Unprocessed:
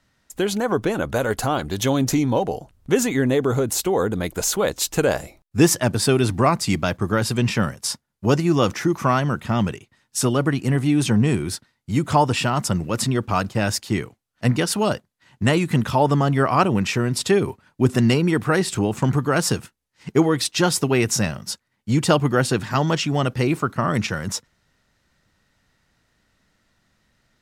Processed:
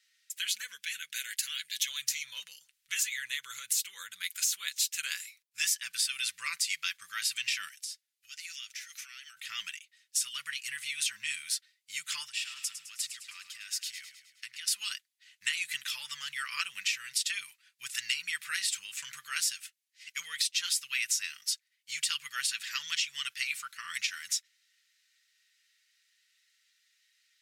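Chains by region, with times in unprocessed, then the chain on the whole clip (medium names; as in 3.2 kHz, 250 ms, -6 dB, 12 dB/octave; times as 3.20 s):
0.62–1.88 s: high-pass 170 Hz 24 dB/octave + high-order bell 920 Hz -13 dB 1.3 oct
7.68–9.37 s: Chebyshev band-stop 110–1300 Hz, order 4 + peaking EQ 1 kHz -4.5 dB 1.3 oct + compression 12:1, threshold -36 dBFS
12.27–14.68 s: compression 12:1, threshold -28 dBFS + feedback delay 105 ms, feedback 54%, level -10 dB
whole clip: inverse Chebyshev high-pass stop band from 800 Hz, stop band 50 dB; comb 5.9 ms, depth 45%; compression 5:1, threshold -27 dBFS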